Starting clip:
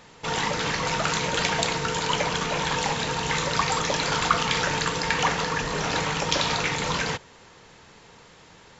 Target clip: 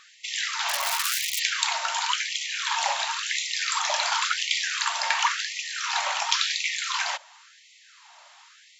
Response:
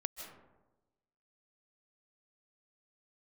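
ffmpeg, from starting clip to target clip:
-filter_complex "[0:a]asplit=3[s0][s1][s2];[s0]afade=t=out:st=0.68:d=0.02[s3];[s1]aeval=exprs='(mod(9.44*val(0)+1,2)-1)/9.44':c=same,afade=t=in:st=0.68:d=0.02,afade=t=out:st=1.38:d=0.02[s4];[s2]afade=t=in:st=1.38:d=0.02[s5];[s3][s4][s5]amix=inputs=3:normalize=0,equalizer=f=1700:w=1.5:g=-2.5,afftfilt=real='re*gte(b*sr/1024,550*pow(1900/550,0.5+0.5*sin(2*PI*0.94*pts/sr)))':imag='im*gte(b*sr/1024,550*pow(1900/550,0.5+0.5*sin(2*PI*0.94*pts/sr)))':win_size=1024:overlap=0.75,volume=1.26"

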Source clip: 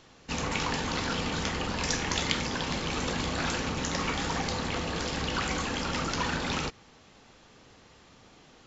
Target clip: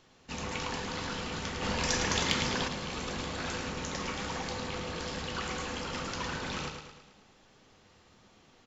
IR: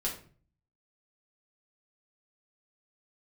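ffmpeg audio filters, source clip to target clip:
-filter_complex "[0:a]aecho=1:1:108|216|324|432|540|648:0.473|0.246|0.128|0.0665|0.0346|0.018,asplit=2[s0][s1];[1:a]atrim=start_sample=2205[s2];[s1][s2]afir=irnorm=-1:irlink=0,volume=0.211[s3];[s0][s3]amix=inputs=2:normalize=0,asettb=1/sr,asplit=3[s4][s5][s6];[s4]atrim=end=1.624[s7];[s5]atrim=start=1.62:end=2.68,asetpts=PTS-STARTPTS,afade=t=in:d=0.004:c=qsin,afade=t=out:st=1.056:d=0.004:c=qsin,acontrast=45[s8];[s6]atrim=start=2.676[s9];[s7][s8]acrossfade=d=0.004:c1=hsin:c2=qsin[s10];[s10][s9]acrossfade=d=0.004:c1=qsin:c2=hsin,volume=0.398"

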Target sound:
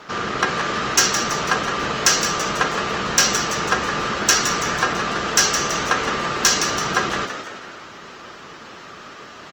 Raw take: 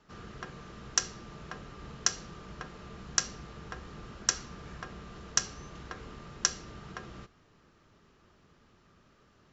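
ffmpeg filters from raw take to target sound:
-filter_complex "[0:a]asplit=2[s0][s1];[s1]highpass=f=720:p=1,volume=35.5,asoftclip=type=tanh:threshold=0.501[s2];[s0][s2]amix=inputs=2:normalize=0,lowpass=f=5800:p=1,volume=0.501,asplit=7[s3][s4][s5][s6][s7][s8][s9];[s4]adelay=166,afreqshift=65,volume=0.398[s10];[s5]adelay=332,afreqshift=130,volume=0.211[s11];[s6]adelay=498,afreqshift=195,volume=0.112[s12];[s7]adelay=664,afreqshift=260,volume=0.0596[s13];[s8]adelay=830,afreqshift=325,volume=0.0313[s14];[s9]adelay=996,afreqshift=390,volume=0.0166[s15];[s3][s10][s11][s12][s13][s14][s15]amix=inputs=7:normalize=0,volume=1.5" -ar 48000 -c:a libopus -b:a 20k

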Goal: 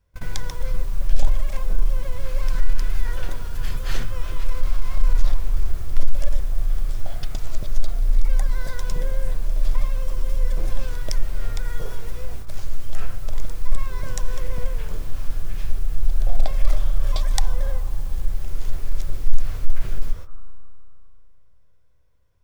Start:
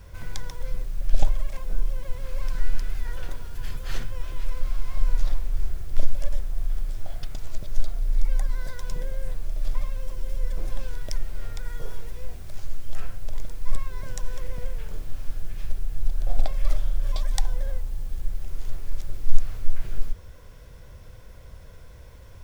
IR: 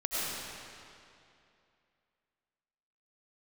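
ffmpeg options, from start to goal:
-filter_complex "[0:a]agate=range=0.0398:threshold=0.0251:ratio=16:detection=peak,acontrast=75,asplit=2[s0][s1];[s1]lowpass=f=1200:t=q:w=8[s2];[1:a]atrim=start_sample=2205,adelay=149[s3];[s2][s3]afir=irnorm=-1:irlink=0,volume=0.0473[s4];[s0][s4]amix=inputs=2:normalize=0,volume=0.891"

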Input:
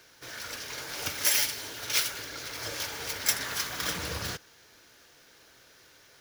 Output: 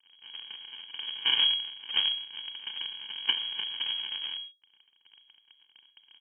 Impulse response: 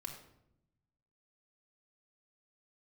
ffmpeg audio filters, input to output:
-filter_complex "[0:a]aecho=1:1:4.6:0.42,bandreject=f=66.86:t=h:w=4,bandreject=f=133.72:t=h:w=4,bandreject=f=200.58:t=h:w=4,bandreject=f=267.44:t=h:w=4,bandreject=f=334.3:t=h:w=4,bandreject=f=401.16:t=h:w=4,acompressor=mode=upward:threshold=0.0178:ratio=2.5,asetrate=22050,aresample=44100,atempo=2,aresample=16000,acrusher=samples=24:mix=1:aa=0.000001,aresample=44100,aeval=exprs='0.266*(cos(1*acos(clip(val(0)/0.266,-1,1)))-cos(1*PI/2))+0.0106*(cos(3*acos(clip(val(0)/0.266,-1,1)))-cos(3*PI/2))+0.0376*(cos(6*acos(clip(val(0)/0.266,-1,1)))-cos(6*PI/2))+0.0422*(cos(8*acos(clip(val(0)/0.266,-1,1)))-cos(8*PI/2))':c=same,aeval=exprs='sgn(val(0))*max(abs(val(0))-0.00668,0)':c=same,asplit=2[s0][s1];[1:a]atrim=start_sample=2205,atrim=end_sample=6615[s2];[s1][s2]afir=irnorm=-1:irlink=0,volume=1.12[s3];[s0][s3]amix=inputs=2:normalize=0,lowpass=f=2800:t=q:w=0.5098,lowpass=f=2800:t=q:w=0.6013,lowpass=f=2800:t=q:w=0.9,lowpass=f=2800:t=q:w=2.563,afreqshift=-3300,volume=0.668"

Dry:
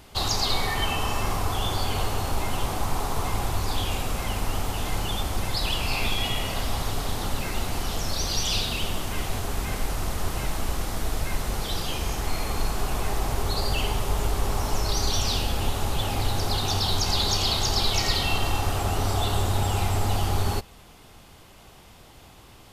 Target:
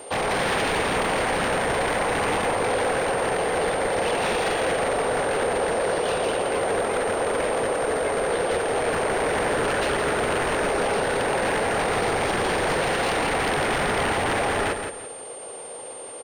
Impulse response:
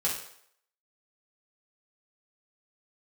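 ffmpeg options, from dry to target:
-filter_complex "[0:a]acrossover=split=3200[s0][s1];[s1]acompressor=threshold=0.00631:ratio=4:attack=1:release=60[s2];[s0][s2]amix=inputs=2:normalize=0,aemphasis=mode=reproduction:type=bsi,acrossover=split=690|3100[s3][s4][s5];[s5]acompressor=threshold=0.00178:ratio=12[s6];[s3][s4][s6]amix=inputs=3:normalize=0,highpass=f=490:t=q:w=4.9,atempo=1.4,aeval=exprs='0.0473*(abs(mod(val(0)/0.0473+3,4)-2)-1)':c=same,aeval=exprs='val(0)+0.00355*sin(2*PI*9000*n/s)':c=same,asplit=2[s7][s8];[s8]aecho=0:1:170|340|510:0.447|0.125|0.035[s9];[s7][s9]amix=inputs=2:normalize=0,volume=2.24"

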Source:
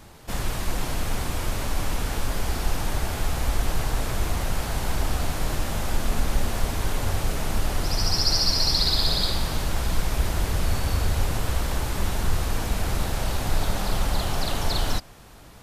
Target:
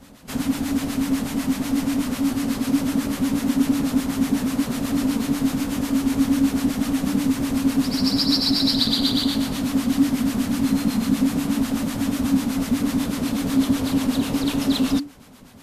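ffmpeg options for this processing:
-filter_complex "[0:a]acrossover=split=1100[s0][s1];[s0]aeval=exprs='val(0)*(1-0.7/2+0.7/2*cos(2*PI*8.1*n/s))':c=same[s2];[s1]aeval=exprs='val(0)*(1-0.7/2-0.7/2*cos(2*PI*8.1*n/s))':c=same[s3];[s2][s3]amix=inputs=2:normalize=0,afreqshift=-290,volume=1.58"

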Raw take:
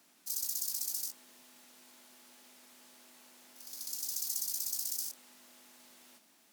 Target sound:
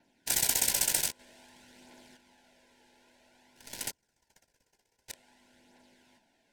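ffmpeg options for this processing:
-filter_complex "[0:a]aemphasis=mode=production:type=75kf,asplit=3[s0][s1][s2];[s0]afade=t=out:st=3.9:d=0.02[s3];[s1]agate=range=0.0316:threshold=0.178:ratio=16:detection=peak,afade=t=in:st=3.9:d=0.02,afade=t=out:st=5.08:d=0.02[s4];[s2]afade=t=in:st=5.08:d=0.02[s5];[s3][s4][s5]amix=inputs=3:normalize=0,adynamicequalizer=threshold=0.00158:dfrequency=8300:dqfactor=6.2:tfrequency=8300:tqfactor=6.2:attack=5:release=100:ratio=0.375:range=2.5:mode=boostabove:tftype=bell,asettb=1/sr,asplit=3[s6][s7][s8];[s6]atrim=end=1.194[s9];[s7]atrim=start=1.19:end=2.17,asetpts=PTS-STARTPTS,afade=t=in:d=0.004:c=qsin,afade=t=out:st=0.976:d=0.004:c=qsin,acontrast=58[s10];[s8]atrim=start=2.166[s11];[s9][s10]acrossfade=d=0.004:c1=hsin:c2=qsin[s12];[s12][s11]acrossfade=d=0.004:c1=qsin:c2=hsin,acrusher=bits=3:mode=log:mix=0:aa=0.000001,aphaser=in_gain=1:out_gain=1:delay=2.5:decay=0.35:speed=0.52:type=triangular,adynamicsmooth=sensitivity=6:basefreq=1900,asuperstop=centerf=1200:order=12:qfactor=3.5"

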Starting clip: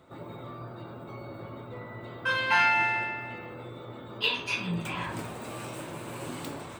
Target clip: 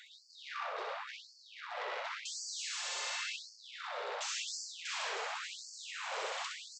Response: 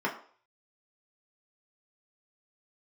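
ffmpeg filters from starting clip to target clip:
-af "aeval=exprs='(tanh(39.8*val(0)+0.5)-tanh(0.5))/39.8':c=same,alimiter=level_in=2.82:limit=0.0631:level=0:latency=1:release=236,volume=0.355,flanger=delay=8.4:depth=7.2:regen=-55:speed=1.2:shape=sinusoidal,aresample=16000,aeval=exprs='0.0224*sin(PI/2*5.01*val(0)/0.0224)':c=same,aresample=44100,aecho=1:1:64|128|192|256|320:0.631|0.271|0.117|0.0502|0.0216,areverse,acompressor=threshold=0.0126:ratio=20,areverse,afftfilt=real='re*gte(b*sr/1024,380*pow(4400/380,0.5+0.5*sin(2*PI*0.92*pts/sr)))':imag='im*gte(b*sr/1024,380*pow(4400/380,0.5+0.5*sin(2*PI*0.92*pts/sr)))':win_size=1024:overlap=0.75,volume=1.68"

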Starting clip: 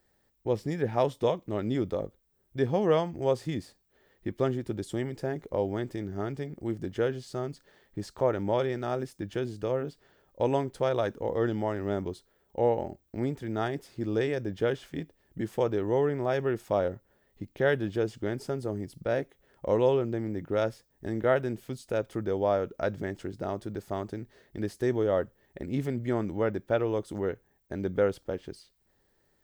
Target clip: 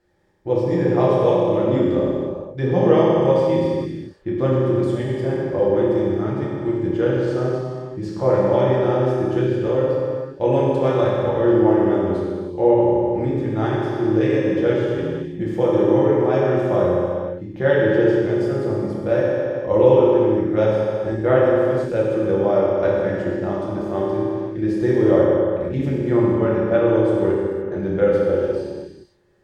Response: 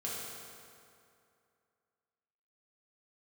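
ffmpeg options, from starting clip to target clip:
-filter_complex "[0:a]aemphasis=mode=reproduction:type=50fm[s0];[1:a]atrim=start_sample=2205,afade=t=out:st=0.45:d=0.01,atrim=end_sample=20286,asetrate=33516,aresample=44100[s1];[s0][s1]afir=irnorm=-1:irlink=0,volume=1.78"

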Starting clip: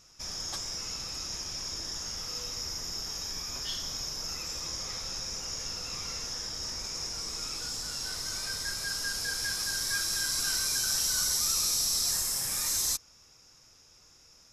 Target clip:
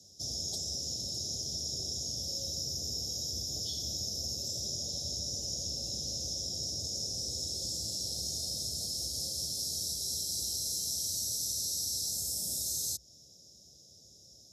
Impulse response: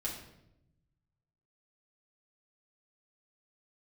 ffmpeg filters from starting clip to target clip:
-af "acompressor=threshold=0.0224:ratio=6,afreqshift=57,asuperstop=centerf=1600:order=12:qfactor=0.55,volume=1.19"

